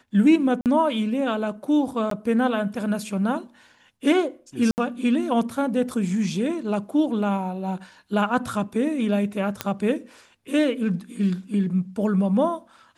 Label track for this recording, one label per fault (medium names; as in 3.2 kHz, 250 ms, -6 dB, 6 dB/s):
0.610000	0.660000	dropout 48 ms
2.100000	2.110000	dropout 13 ms
4.710000	4.780000	dropout 69 ms
9.610000	9.610000	pop -8 dBFS